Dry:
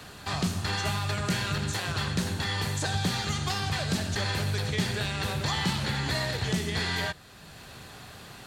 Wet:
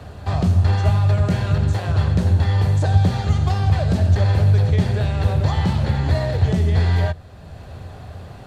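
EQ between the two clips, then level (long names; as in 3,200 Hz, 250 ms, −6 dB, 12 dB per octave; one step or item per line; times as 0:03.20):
spectral tilt −2.5 dB per octave
parametric band 84 Hz +12 dB 0.69 octaves
parametric band 620 Hz +9 dB 1 octave
0.0 dB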